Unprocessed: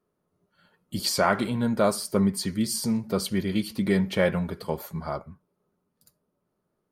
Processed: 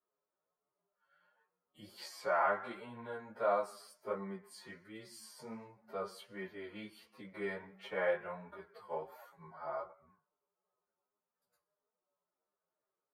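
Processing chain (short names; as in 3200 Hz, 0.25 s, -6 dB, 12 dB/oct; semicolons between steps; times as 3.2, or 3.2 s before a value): time stretch by phase-locked vocoder 1.9×; three-band isolator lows -22 dB, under 480 Hz, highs -18 dB, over 2200 Hz; chorus 1.4 Hz, delay 15.5 ms, depth 4.3 ms; gain -4 dB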